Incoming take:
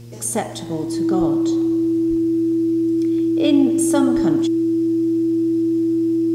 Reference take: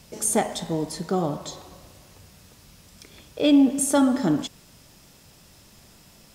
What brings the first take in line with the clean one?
de-hum 117.8 Hz, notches 4; notch 330 Hz, Q 30; de-plosive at 1.19/2.09/4.15

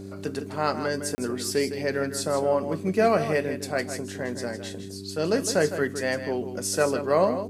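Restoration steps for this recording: clip repair -10.5 dBFS; de-hum 97.6 Hz, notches 4; interpolate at 1.15, 30 ms; inverse comb 0.159 s -10 dB

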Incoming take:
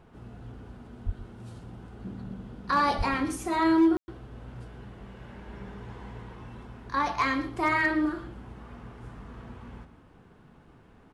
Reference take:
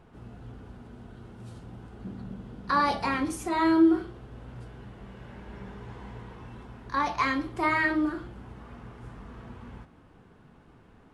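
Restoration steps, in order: clip repair -16.5 dBFS; de-plosive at 1.05/2.97; room tone fill 3.97–4.08; inverse comb 0.121 s -14.5 dB

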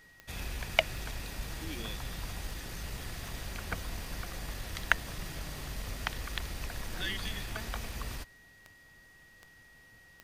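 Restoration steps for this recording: de-click; notch 1900 Hz, Q 30

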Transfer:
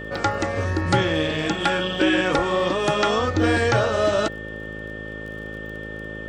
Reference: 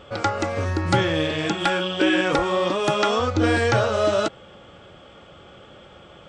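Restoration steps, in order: de-click; de-hum 53.5 Hz, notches 11; notch 1800 Hz, Q 30

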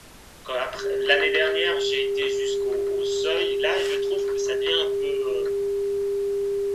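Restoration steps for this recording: notch 400 Hz, Q 30; noise print and reduce 30 dB

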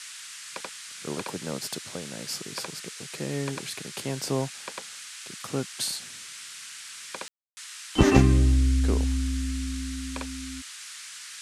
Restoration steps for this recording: room tone fill 7.28–7.57; noise print and reduce 28 dB

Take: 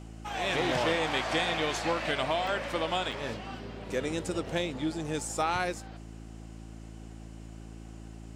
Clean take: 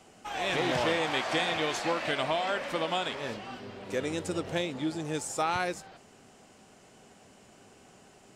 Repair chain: clip repair -17.5 dBFS; de-hum 55 Hz, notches 6; interpolate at 2.47/3.12, 3 ms

